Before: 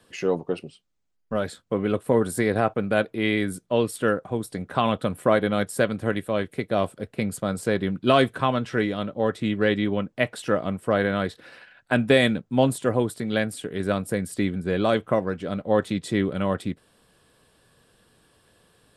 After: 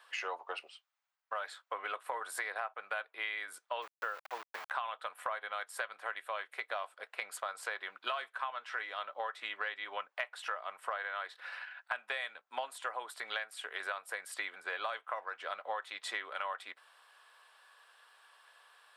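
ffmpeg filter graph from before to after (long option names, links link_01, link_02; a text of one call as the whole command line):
ffmpeg -i in.wav -filter_complex "[0:a]asettb=1/sr,asplit=3[link_01][link_02][link_03];[link_01]atrim=end=3.824[link_04];[link_02]atrim=start=3.82:end=4.71,asetpts=PTS-STARTPTS,afade=type=in:duration=0.004:curve=qsin,afade=type=out:start_time=0.886:duration=0.004:curve=qsin,lowpass=frequency=1100:poles=1,aeval=exprs='val(0)*gte(abs(val(0)),0.0158)':channel_layout=same[link_05];[link_03]atrim=start=4.706[link_06];[link_04][link_05]acrossfade=duration=0.004:curve1=hsin:curve2=qsin[link_07];[link_07][link_06]acrossfade=duration=0.004:curve1=qsin:curve2=hsin,highpass=frequency=910:width=0.5412,highpass=frequency=910:width=1.3066,equalizer=frequency=10000:width_type=o:width=2.6:gain=-15,acompressor=threshold=-42dB:ratio=10,volume=7.5dB" out.wav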